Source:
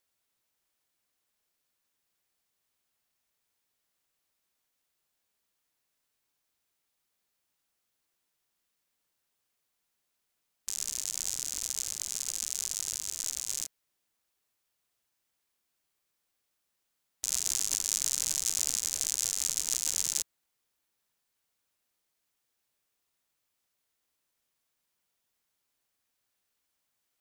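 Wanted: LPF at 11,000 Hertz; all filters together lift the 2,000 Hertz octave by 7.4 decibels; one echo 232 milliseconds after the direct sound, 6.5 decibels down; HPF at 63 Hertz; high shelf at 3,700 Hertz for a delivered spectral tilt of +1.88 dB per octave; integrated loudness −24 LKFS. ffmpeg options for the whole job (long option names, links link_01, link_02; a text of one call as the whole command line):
ffmpeg -i in.wav -af "highpass=63,lowpass=11000,equalizer=frequency=2000:width_type=o:gain=7.5,highshelf=frequency=3700:gain=5.5,aecho=1:1:232:0.473,volume=1.5dB" out.wav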